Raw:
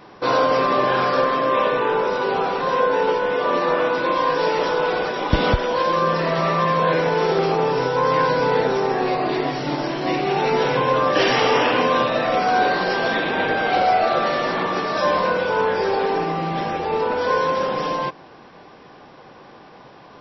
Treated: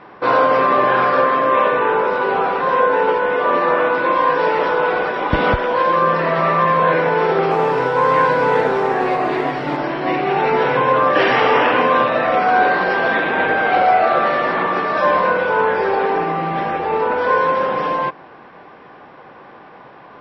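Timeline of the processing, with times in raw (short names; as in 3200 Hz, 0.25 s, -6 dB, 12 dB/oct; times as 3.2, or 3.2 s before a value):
7.5–9.77 modulation noise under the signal 17 dB
whole clip: Chebyshev low-pass 1800 Hz, order 2; tilt +1.5 dB/oct; gain +5 dB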